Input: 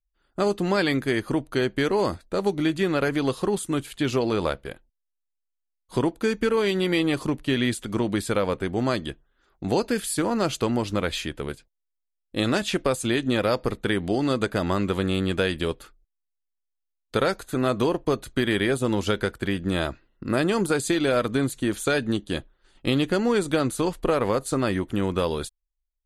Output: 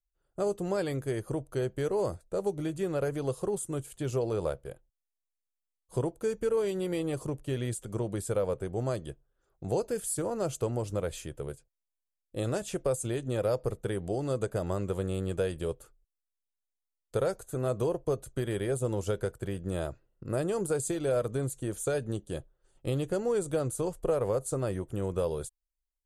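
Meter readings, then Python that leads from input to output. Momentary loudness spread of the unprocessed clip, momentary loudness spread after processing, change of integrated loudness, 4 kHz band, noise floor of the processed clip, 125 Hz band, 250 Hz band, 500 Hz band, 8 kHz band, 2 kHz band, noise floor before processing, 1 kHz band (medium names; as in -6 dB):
7 LU, 7 LU, -7.5 dB, -16.5 dB, under -85 dBFS, -4.0 dB, -11.0 dB, -5.0 dB, -3.5 dB, -16.0 dB, -80 dBFS, -11.0 dB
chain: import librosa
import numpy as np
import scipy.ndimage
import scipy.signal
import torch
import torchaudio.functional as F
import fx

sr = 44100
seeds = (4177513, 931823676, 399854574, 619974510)

y = fx.graphic_eq(x, sr, hz=(125, 250, 500, 1000, 2000, 4000, 8000), db=(6, -10, 6, -4, -9, -11, 6))
y = y * librosa.db_to_amplitude(-6.5)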